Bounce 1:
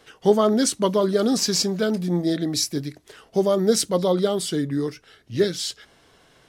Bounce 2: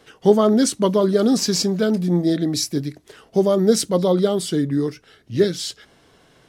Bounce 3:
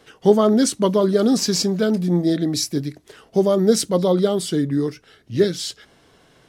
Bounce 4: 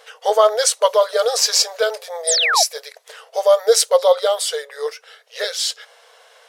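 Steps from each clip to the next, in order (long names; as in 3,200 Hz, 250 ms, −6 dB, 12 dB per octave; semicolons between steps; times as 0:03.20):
parametric band 200 Hz +4.5 dB 2.8 octaves
no processing that can be heard
linear-phase brick-wall high-pass 440 Hz; sound drawn into the spectrogram fall, 0:02.27–0:02.63, 600–10,000 Hz −24 dBFS; level +7 dB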